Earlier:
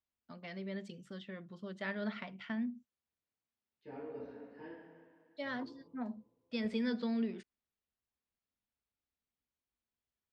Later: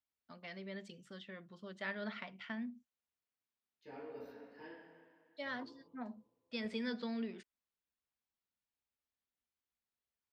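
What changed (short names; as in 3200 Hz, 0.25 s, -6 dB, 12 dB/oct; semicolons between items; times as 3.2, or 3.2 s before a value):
second voice: remove air absorption 200 m; master: add low shelf 490 Hz -7 dB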